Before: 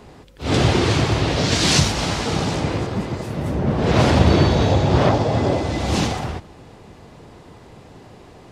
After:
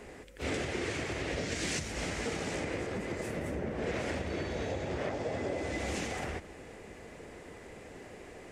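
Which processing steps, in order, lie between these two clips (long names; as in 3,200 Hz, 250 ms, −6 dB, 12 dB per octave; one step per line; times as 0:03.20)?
0:01.33–0:02.30: low-shelf EQ 360 Hz +5.5 dB
downward compressor 10 to 1, threshold −26 dBFS, peak gain reduction 19 dB
octave-band graphic EQ 125/500/1,000/2,000/4,000/8,000 Hz −8/+5/−6/+10/−6/+7 dB
level −5.5 dB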